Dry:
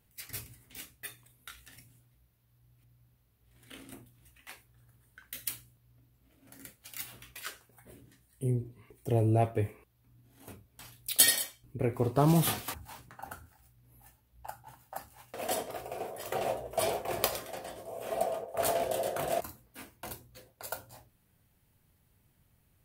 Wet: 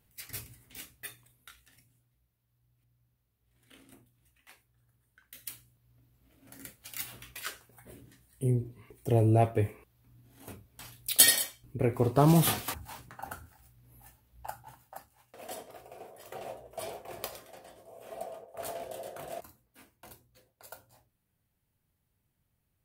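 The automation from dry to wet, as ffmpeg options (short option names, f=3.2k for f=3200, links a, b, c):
-af "volume=10.5dB,afade=t=out:st=1.08:d=0.56:silence=0.398107,afade=t=in:st=5.34:d=1.27:silence=0.298538,afade=t=out:st=14.56:d=0.52:silence=0.251189"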